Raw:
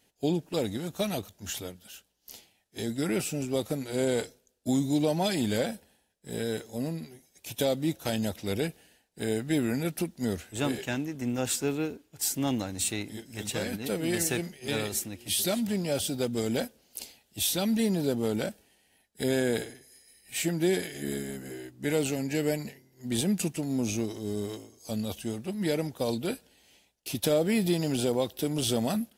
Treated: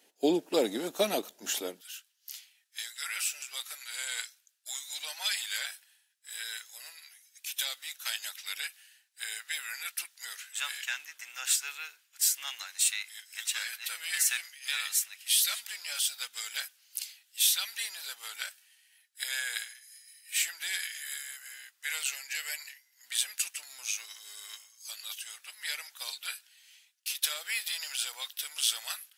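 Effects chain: HPF 280 Hz 24 dB/oct, from 1.81 s 1400 Hz; gain +3.5 dB

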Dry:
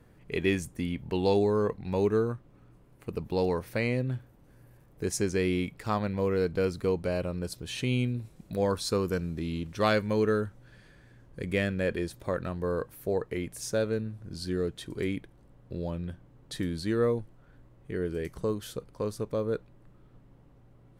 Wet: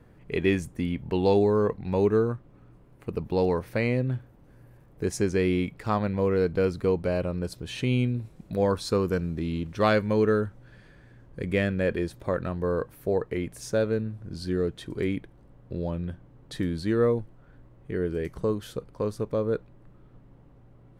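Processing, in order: high shelf 3600 Hz -8 dB; gain +3.5 dB

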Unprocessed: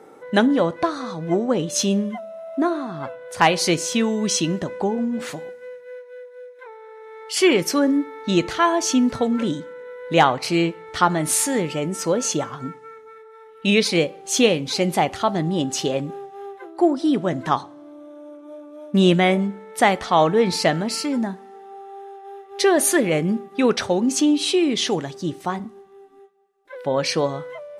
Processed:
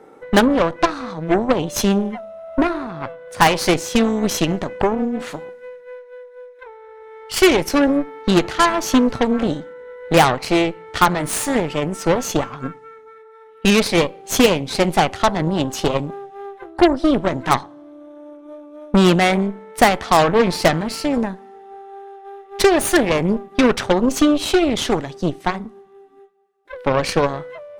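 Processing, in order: tone controls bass +1 dB, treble -5 dB; transient shaper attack +5 dB, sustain +1 dB; added harmonics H 8 -15 dB, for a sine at -3 dBFS

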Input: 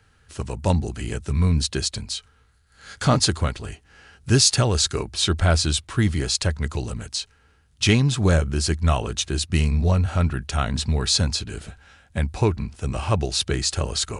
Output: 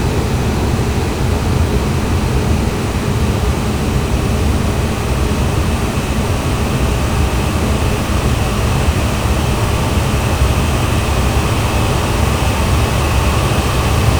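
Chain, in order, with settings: fuzz box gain 38 dB, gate -41 dBFS; Paulstretch 46×, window 1.00 s, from 12.65; gain +2 dB

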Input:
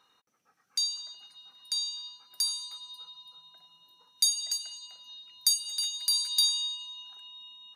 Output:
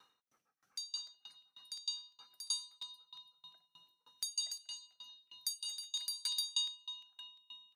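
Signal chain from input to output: crackling interface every 0.35 s, samples 128, repeat, from 0.37; dB-ramp tremolo decaying 3.2 Hz, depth 30 dB; gain +2 dB

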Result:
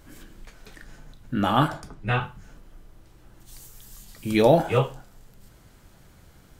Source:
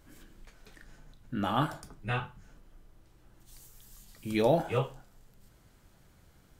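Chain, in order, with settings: 1.68–2.21 high shelf 8300 Hz -12 dB; gain +8 dB

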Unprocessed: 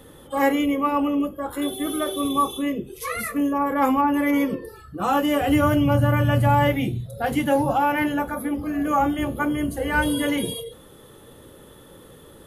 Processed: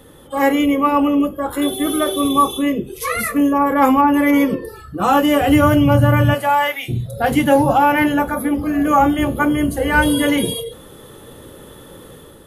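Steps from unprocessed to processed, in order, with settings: 6.33–6.88 HPF 430 Hz -> 1400 Hz 12 dB/oct; AGC gain up to 5.5 dB; gain +2 dB

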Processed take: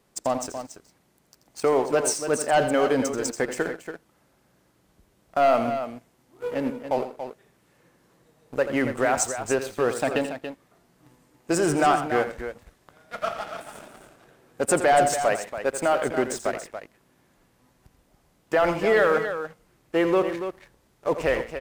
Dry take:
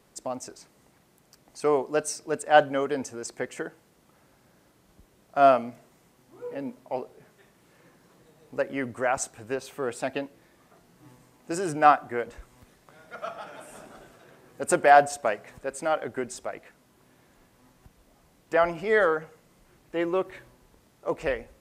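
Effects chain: sample leveller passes 2; limiter -13 dBFS, peak gain reduction 9 dB; tapped delay 84/127/283 ms -10.5/-19.5/-9.5 dB

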